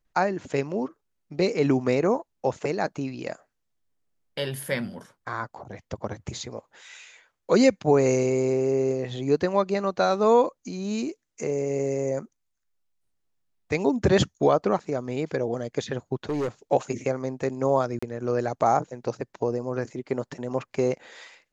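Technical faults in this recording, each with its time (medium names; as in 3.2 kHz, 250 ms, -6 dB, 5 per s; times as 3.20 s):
16.29–16.48 s: clipped -23.5 dBFS
17.99–18.02 s: dropout 35 ms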